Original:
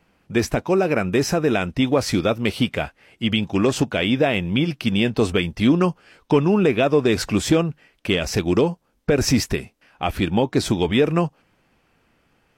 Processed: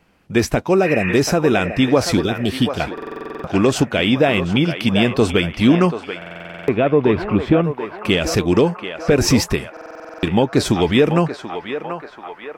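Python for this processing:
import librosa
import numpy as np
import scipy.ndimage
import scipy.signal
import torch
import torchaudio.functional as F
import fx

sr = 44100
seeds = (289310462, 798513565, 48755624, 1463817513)

y = fx.spec_repair(x, sr, seeds[0], start_s=0.87, length_s=0.24, low_hz=800.0, high_hz=2900.0, source='after')
y = fx.ellip_bandstop(y, sr, low_hz=390.0, high_hz=3100.0, order=3, stop_db=40, at=(2.17, 2.8))
y = fx.air_absorb(y, sr, metres=480.0, at=(6.45, 7.64))
y = fx.echo_banded(y, sr, ms=735, feedback_pct=73, hz=1100.0, wet_db=-6.0)
y = fx.buffer_glitch(y, sr, at_s=(2.93, 6.17, 9.72), block=2048, repeats=10)
y = F.gain(torch.from_numpy(y), 3.5).numpy()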